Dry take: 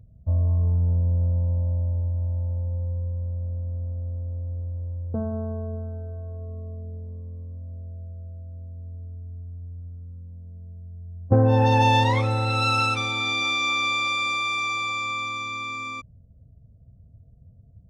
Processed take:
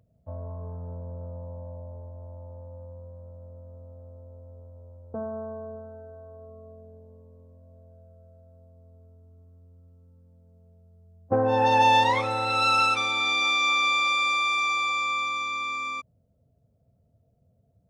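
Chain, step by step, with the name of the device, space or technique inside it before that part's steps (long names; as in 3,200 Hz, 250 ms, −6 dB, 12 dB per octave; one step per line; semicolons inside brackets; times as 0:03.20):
filter by subtraction (in parallel: low-pass filter 830 Hz 12 dB per octave + polarity inversion)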